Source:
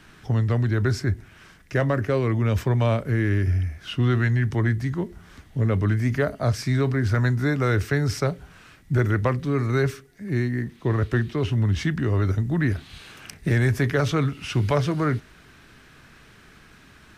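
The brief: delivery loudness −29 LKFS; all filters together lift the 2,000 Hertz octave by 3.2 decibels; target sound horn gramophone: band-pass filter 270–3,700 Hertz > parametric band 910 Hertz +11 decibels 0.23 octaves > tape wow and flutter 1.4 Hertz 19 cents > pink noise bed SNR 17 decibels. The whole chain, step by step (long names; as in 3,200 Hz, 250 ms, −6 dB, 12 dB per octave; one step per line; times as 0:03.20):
band-pass filter 270–3,700 Hz
parametric band 910 Hz +11 dB 0.23 octaves
parametric band 2,000 Hz +4 dB
tape wow and flutter 1.4 Hz 19 cents
pink noise bed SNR 17 dB
level −1.5 dB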